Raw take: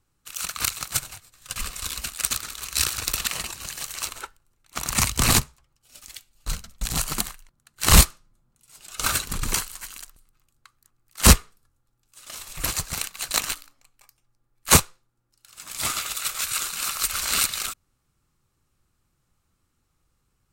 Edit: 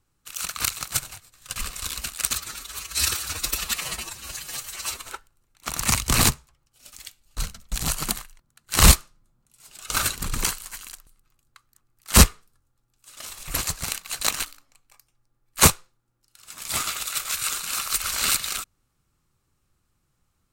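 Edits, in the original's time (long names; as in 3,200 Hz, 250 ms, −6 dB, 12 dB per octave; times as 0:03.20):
0:02.35–0:04.16: time-stretch 1.5×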